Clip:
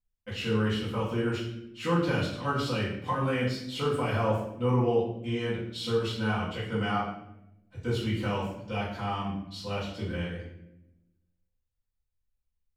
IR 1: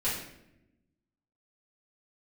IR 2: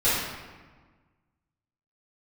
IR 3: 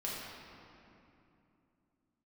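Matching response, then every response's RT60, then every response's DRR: 1; 0.85, 1.4, 2.8 s; -10.5, -13.5, -6.5 dB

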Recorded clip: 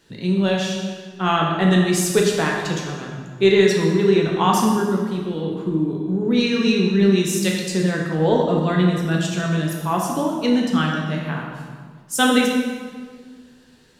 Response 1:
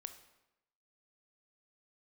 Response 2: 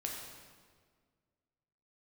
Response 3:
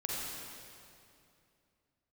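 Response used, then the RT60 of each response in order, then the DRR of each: 2; 0.90, 1.7, 2.6 s; 8.5, -1.0, -5.0 dB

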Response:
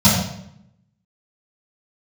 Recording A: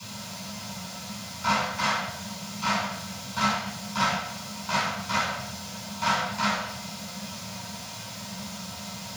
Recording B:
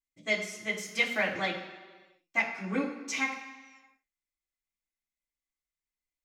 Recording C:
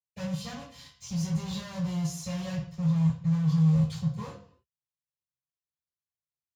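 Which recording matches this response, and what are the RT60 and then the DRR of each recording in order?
A; 0.70, 1.4, 0.55 s; -14.0, -6.5, -14.0 dB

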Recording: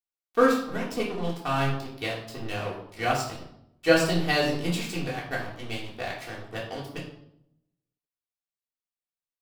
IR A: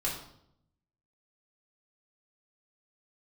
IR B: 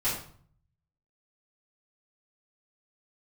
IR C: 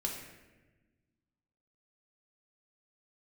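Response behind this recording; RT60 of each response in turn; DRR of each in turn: A; 0.70, 0.50, 1.2 s; -6.0, -13.0, -1.0 dB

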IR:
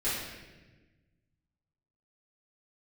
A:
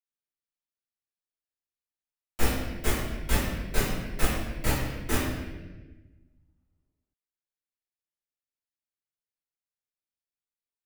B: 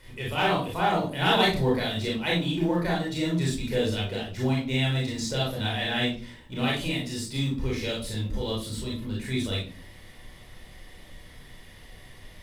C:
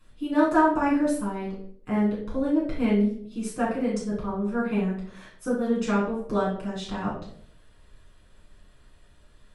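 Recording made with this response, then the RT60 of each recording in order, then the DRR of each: A; 1.2, 0.40, 0.60 s; -13.0, -4.0, -7.5 dB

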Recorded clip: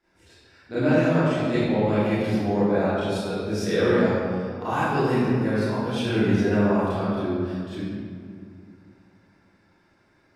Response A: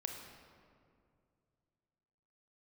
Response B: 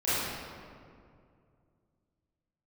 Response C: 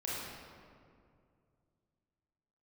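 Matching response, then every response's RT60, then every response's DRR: B; 2.3, 2.3, 2.3 s; 2.5, -14.5, -7.5 dB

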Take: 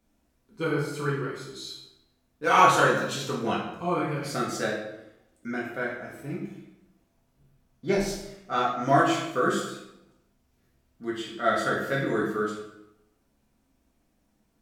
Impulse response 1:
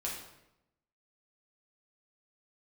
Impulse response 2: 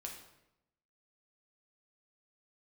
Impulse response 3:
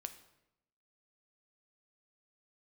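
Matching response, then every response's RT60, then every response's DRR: 1; 0.85, 0.85, 0.85 s; -4.5, -0.5, 8.0 dB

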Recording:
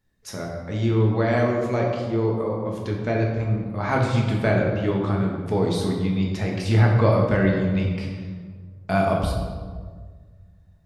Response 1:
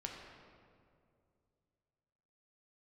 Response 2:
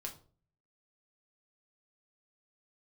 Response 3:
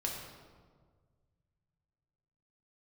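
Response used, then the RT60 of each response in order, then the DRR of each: 3; 2.4, 0.45, 1.7 s; -0.5, 0.5, -1.5 dB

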